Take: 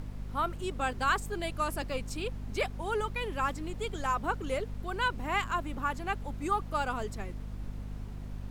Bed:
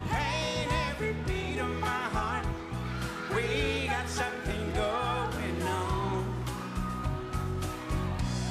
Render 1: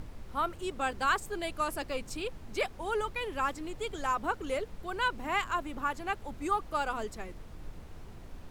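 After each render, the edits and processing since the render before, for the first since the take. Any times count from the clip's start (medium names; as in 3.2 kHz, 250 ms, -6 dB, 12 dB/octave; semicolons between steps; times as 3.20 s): hum notches 50/100/150/200/250 Hz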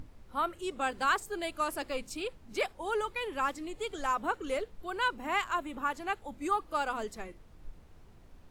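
noise print and reduce 9 dB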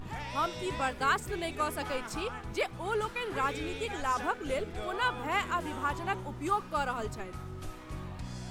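add bed -9.5 dB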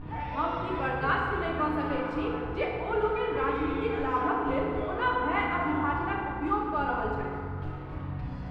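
distance through air 410 m; FDN reverb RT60 2.3 s, low-frequency decay 0.85×, high-frequency decay 0.5×, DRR -3.5 dB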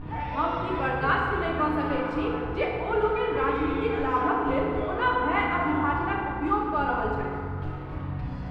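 trim +3 dB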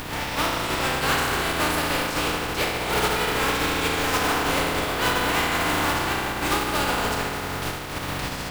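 spectral contrast reduction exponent 0.35; in parallel at -8 dB: integer overflow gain 18 dB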